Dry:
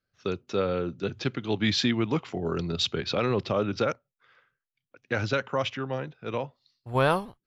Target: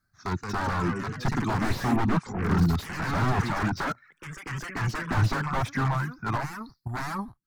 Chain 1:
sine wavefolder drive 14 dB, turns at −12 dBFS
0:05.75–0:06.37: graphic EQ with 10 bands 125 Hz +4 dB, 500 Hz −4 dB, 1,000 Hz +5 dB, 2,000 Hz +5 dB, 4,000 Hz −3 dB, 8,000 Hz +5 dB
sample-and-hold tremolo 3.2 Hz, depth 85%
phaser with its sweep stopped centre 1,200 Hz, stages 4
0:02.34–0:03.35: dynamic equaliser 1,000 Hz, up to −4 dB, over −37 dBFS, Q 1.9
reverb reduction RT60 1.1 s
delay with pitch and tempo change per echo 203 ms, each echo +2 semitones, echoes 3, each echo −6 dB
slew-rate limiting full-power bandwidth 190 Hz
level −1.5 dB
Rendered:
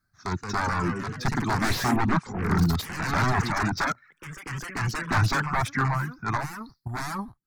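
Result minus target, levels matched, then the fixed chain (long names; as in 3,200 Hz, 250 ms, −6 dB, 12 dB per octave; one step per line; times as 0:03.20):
slew-rate limiting: distortion −7 dB
sine wavefolder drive 14 dB, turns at −12 dBFS
0:05.75–0:06.37: graphic EQ with 10 bands 125 Hz +4 dB, 500 Hz −4 dB, 1,000 Hz +5 dB, 2,000 Hz +5 dB, 4,000 Hz −3 dB, 8,000 Hz +5 dB
sample-and-hold tremolo 3.2 Hz, depth 85%
phaser with its sweep stopped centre 1,200 Hz, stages 4
0:02.34–0:03.35: dynamic equaliser 1,000 Hz, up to −4 dB, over −37 dBFS, Q 1.9
reverb reduction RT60 1.1 s
delay with pitch and tempo change per echo 203 ms, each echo +2 semitones, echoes 3, each echo −6 dB
slew-rate limiting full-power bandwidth 65.5 Hz
level −1.5 dB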